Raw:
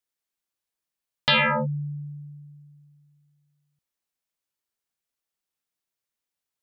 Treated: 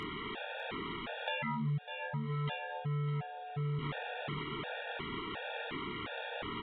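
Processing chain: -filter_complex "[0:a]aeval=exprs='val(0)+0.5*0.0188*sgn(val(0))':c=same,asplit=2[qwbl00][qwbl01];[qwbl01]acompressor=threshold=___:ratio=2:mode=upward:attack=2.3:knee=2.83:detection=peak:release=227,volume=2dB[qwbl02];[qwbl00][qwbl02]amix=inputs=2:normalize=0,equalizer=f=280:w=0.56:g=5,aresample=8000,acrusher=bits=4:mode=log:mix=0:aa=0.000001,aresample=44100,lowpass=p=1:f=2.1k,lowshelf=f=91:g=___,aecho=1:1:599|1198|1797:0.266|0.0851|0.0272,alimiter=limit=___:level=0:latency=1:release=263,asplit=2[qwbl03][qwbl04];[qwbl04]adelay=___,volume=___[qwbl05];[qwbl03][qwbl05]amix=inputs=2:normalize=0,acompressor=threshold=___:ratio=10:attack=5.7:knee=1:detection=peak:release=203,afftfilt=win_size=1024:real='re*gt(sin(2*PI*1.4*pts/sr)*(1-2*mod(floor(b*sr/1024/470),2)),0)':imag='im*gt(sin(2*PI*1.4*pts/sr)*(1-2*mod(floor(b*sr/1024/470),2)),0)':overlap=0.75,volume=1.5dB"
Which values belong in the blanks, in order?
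-31dB, -5, -15dB, 26, -7dB, -32dB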